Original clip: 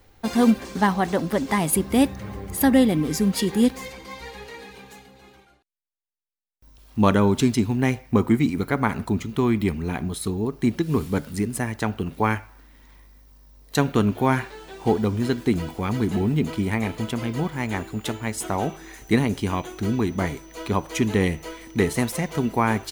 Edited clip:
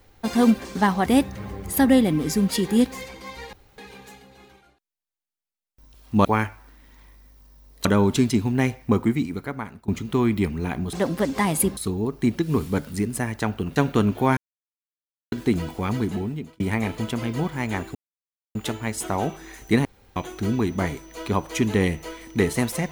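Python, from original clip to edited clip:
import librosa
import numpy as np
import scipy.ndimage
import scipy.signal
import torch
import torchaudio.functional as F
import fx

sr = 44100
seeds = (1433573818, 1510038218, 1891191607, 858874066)

y = fx.edit(x, sr, fx.move(start_s=1.06, length_s=0.84, to_s=10.17),
    fx.room_tone_fill(start_s=4.37, length_s=0.25),
    fx.fade_out_to(start_s=8.06, length_s=1.06, floor_db=-22.0),
    fx.move(start_s=12.16, length_s=1.6, to_s=7.09),
    fx.silence(start_s=14.37, length_s=0.95),
    fx.fade_out_span(start_s=15.91, length_s=0.69),
    fx.insert_silence(at_s=17.95, length_s=0.6),
    fx.room_tone_fill(start_s=19.25, length_s=0.31), tone=tone)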